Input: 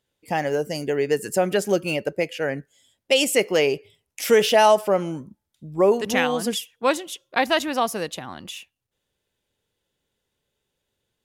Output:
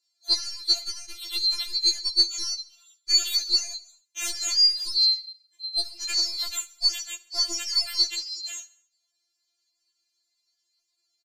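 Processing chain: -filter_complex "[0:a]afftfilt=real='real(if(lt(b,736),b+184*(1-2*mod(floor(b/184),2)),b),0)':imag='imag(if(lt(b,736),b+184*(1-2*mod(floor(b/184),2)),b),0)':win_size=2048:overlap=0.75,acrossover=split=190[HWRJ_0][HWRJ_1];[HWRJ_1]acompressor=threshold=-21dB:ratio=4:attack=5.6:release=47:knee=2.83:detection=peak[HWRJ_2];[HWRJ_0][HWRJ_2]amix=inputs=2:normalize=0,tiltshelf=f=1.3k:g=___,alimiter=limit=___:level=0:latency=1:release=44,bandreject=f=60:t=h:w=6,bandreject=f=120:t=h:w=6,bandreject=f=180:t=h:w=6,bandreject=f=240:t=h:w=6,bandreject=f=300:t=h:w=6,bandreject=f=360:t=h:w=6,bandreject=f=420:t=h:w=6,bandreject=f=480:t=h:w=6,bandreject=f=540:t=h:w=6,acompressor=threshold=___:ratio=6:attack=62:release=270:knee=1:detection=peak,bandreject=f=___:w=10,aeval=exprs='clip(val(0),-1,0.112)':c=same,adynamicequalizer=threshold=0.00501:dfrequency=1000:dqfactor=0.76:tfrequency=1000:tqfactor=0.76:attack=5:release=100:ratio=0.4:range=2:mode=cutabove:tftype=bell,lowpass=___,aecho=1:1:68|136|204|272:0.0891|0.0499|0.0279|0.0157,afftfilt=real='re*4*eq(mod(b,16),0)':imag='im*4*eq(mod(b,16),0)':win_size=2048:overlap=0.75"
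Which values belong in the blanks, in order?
-6.5, -9.5dB, -22dB, 990, 8.3k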